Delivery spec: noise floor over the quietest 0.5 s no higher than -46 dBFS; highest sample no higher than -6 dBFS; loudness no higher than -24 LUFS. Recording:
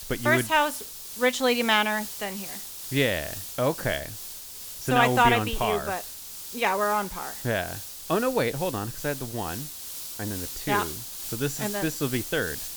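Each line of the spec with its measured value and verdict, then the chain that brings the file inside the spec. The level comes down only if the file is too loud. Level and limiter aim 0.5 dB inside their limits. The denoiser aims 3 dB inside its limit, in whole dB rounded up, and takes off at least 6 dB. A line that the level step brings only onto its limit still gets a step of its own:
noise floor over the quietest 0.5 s -40 dBFS: fail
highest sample -7.0 dBFS: pass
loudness -26.5 LUFS: pass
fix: noise reduction 9 dB, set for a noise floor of -40 dBFS

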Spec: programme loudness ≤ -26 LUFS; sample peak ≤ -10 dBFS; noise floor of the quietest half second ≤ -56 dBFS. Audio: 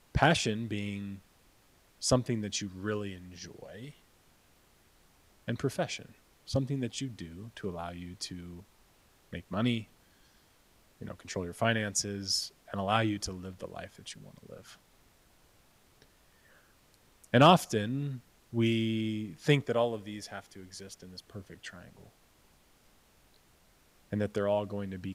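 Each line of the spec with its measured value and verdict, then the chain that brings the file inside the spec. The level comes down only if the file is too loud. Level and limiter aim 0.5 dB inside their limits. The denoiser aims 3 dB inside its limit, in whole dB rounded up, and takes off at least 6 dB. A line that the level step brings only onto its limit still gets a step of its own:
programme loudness -31.5 LUFS: pass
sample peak -8.5 dBFS: fail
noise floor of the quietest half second -64 dBFS: pass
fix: peak limiter -10.5 dBFS

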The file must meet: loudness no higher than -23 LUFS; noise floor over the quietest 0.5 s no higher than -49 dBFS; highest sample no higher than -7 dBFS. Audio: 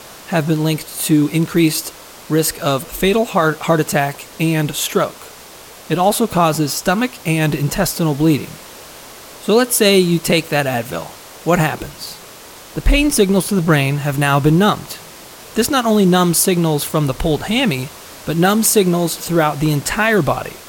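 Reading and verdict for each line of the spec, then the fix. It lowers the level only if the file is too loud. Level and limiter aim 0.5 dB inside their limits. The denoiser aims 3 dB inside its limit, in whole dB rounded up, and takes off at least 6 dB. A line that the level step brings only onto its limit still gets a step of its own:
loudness -16.0 LUFS: fail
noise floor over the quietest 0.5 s -38 dBFS: fail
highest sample -2.5 dBFS: fail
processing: noise reduction 7 dB, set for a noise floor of -38 dBFS; trim -7.5 dB

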